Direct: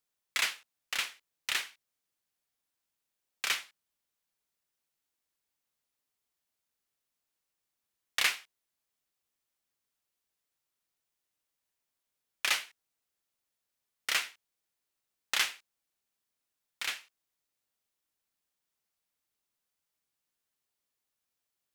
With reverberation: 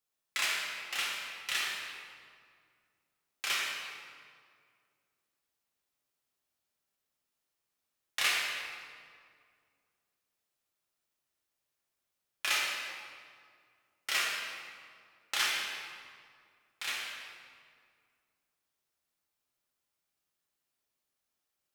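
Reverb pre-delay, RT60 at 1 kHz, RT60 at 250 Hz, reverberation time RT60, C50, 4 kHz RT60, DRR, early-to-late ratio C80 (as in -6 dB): 3 ms, 2.0 s, 2.5 s, 2.1 s, -0.5 dB, 1.4 s, -5.0 dB, 1.0 dB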